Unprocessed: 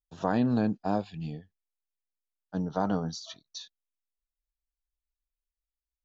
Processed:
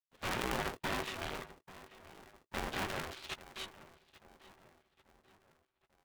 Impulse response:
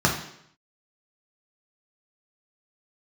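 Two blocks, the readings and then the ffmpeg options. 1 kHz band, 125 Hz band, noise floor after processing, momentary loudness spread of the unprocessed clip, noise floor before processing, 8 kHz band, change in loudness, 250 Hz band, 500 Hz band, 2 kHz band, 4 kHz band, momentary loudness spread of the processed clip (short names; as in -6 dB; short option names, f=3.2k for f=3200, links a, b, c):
-5.5 dB, -13.0 dB, -85 dBFS, 18 LU, under -85 dBFS, n/a, -9.0 dB, -16.0 dB, -8.5 dB, +5.0 dB, +2.0 dB, 19 LU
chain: -filter_complex "[0:a]agate=range=-31dB:threshold=-42dB:ratio=16:detection=peak,tiltshelf=f=660:g=-3.5,acompressor=threshold=-38dB:ratio=6,aeval=exprs='0.075*sin(PI/2*8.91*val(0)/0.075)':c=same,aeval=exprs='(tanh(89.1*val(0)+0.8)-tanh(0.8))/89.1':c=same,highpass=f=270:t=q:w=0.5412,highpass=f=270:t=q:w=1.307,lowpass=f=3.5k:t=q:w=0.5176,lowpass=f=3.5k:t=q:w=0.7071,lowpass=f=3.5k:t=q:w=1.932,afreqshift=-200,aeval=exprs='0.0251*(cos(1*acos(clip(val(0)/0.0251,-1,1)))-cos(1*PI/2))+0.00631*(cos(2*acos(clip(val(0)/0.0251,-1,1)))-cos(2*PI/2))+0.00224*(cos(3*acos(clip(val(0)/0.0251,-1,1)))-cos(3*PI/2))+0.00158*(cos(7*acos(clip(val(0)/0.0251,-1,1)))-cos(7*PI/2))':c=same,asplit=2[a][b];[b]adelay=14,volume=-10.5dB[c];[a][c]amix=inputs=2:normalize=0,asplit=2[d][e];[e]adelay=839,lowpass=f=2.4k:p=1,volume=-16.5dB,asplit=2[f][g];[g]adelay=839,lowpass=f=2.4k:p=1,volume=0.51,asplit=2[h][i];[i]adelay=839,lowpass=f=2.4k:p=1,volume=0.51,asplit=2[j][k];[k]adelay=839,lowpass=f=2.4k:p=1,volume=0.51,asplit=2[l][m];[m]adelay=839,lowpass=f=2.4k:p=1,volume=0.51[n];[d][f][h][j][l][n]amix=inputs=6:normalize=0,aeval=exprs='val(0)*sgn(sin(2*PI*380*n/s))':c=same,volume=6.5dB"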